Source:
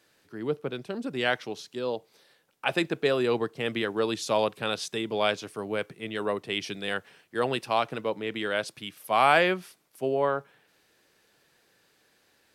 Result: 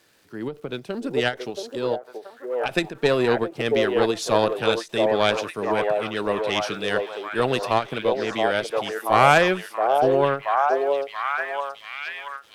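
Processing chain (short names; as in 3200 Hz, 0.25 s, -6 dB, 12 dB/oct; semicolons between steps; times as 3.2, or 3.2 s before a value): crackle 310/s -54 dBFS; added harmonics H 4 -16 dB, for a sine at -6 dBFS; on a send: delay with a stepping band-pass 0.678 s, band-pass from 550 Hz, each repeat 0.7 oct, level 0 dB; on the sum: ending taper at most 250 dB/s; gain +4.5 dB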